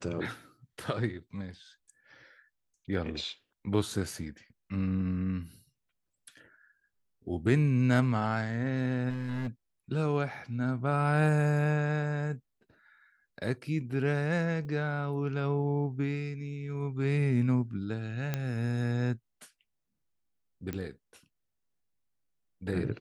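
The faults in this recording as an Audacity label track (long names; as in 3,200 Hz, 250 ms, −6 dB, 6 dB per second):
9.090000	9.490000	clipping −29.5 dBFS
14.650000	14.650000	drop-out 2.7 ms
18.340000	18.340000	click −17 dBFS
20.730000	20.730000	click −22 dBFS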